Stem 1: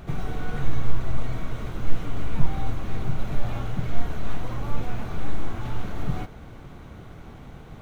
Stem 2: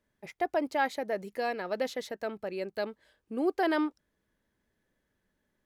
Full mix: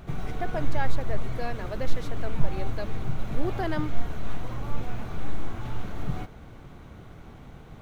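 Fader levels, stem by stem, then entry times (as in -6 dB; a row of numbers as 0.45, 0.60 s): -3.0, -3.5 dB; 0.00, 0.00 s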